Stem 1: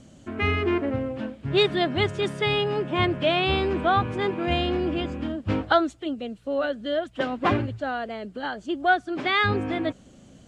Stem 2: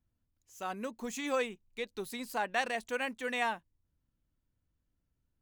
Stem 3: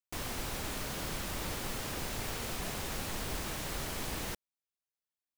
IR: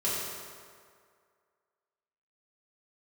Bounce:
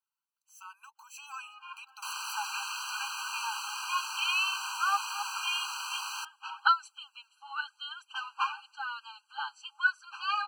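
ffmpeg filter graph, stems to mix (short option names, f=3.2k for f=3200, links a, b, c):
-filter_complex "[0:a]flanger=delay=0.7:depth=6.7:regen=33:speed=0.87:shape=sinusoidal,adynamicequalizer=threshold=0.00708:dfrequency=3300:dqfactor=0.7:tfrequency=3300:tqfactor=0.7:attack=5:release=100:ratio=0.375:range=2.5:mode=boostabove:tftype=highshelf,adelay=950,volume=-7.5dB[a];[1:a]acompressor=threshold=-50dB:ratio=2,volume=1.5dB,asplit=2[b][c];[2:a]acrossover=split=8500[d][e];[e]acompressor=threshold=-58dB:ratio=4:attack=1:release=60[f];[d][f]amix=inputs=2:normalize=0,bandreject=f=840:w=12,adelay=1900,volume=-1dB[g];[c]apad=whole_len=503840[h];[a][h]sidechaincompress=threshold=-56dB:ratio=16:attack=16:release=356[i];[i][b][g]amix=inputs=3:normalize=0,dynaudnorm=f=280:g=9:m=8.5dB,afftfilt=real='re*eq(mod(floor(b*sr/1024/800),2),1)':imag='im*eq(mod(floor(b*sr/1024/800),2),1)':win_size=1024:overlap=0.75"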